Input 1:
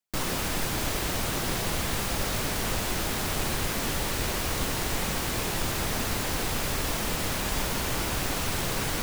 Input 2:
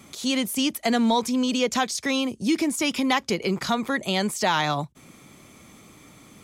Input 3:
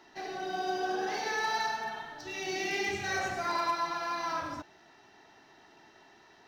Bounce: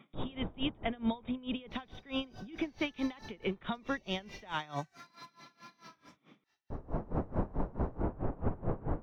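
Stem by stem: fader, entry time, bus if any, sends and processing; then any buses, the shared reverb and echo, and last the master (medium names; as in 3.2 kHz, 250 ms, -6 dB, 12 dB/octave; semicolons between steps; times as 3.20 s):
+1.5 dB, 0.00 s, muted 4.56–6.70 s, bus A, no send, Bessel low-pass 670 Hz, order 4; level rider gain up to 5.5 dB; auto duck -23 dB, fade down 1.45 s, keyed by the second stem
-7.0 dB, 0.00 s, bus A, no send, FFT band-pass 120–3800 Hz
-4.5 dB, 1.55 s, no bus, no send, amplifier tone stack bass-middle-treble 5-5-5
bus A: 0.0 dB, peak limiter -21.5 dBFS, peak gain reduction 9.5 dB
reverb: none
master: logarithmic tremolo 4.6 Hz, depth 23 dB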